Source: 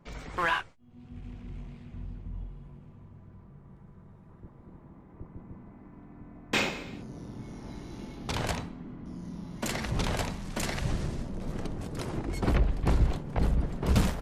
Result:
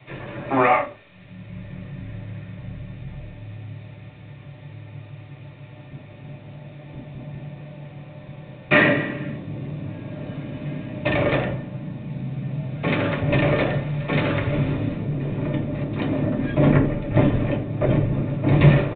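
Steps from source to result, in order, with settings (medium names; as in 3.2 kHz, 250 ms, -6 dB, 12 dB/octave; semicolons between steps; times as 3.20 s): dynamic bell 350 Hz, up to +6 dB, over -53 dBFS, Q 4; tape speed -25%; in parallel at -4 dB: word length cut 8-bit, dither triangular; on the sum: small resonant body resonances 580/1800 Hz, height 10 dB, ringing for 45 ms; reverberation RT60 0.35 s, pre-delay 3 ms, DRR 0.5 dB; resampled via 8 kHz; trim -5 dB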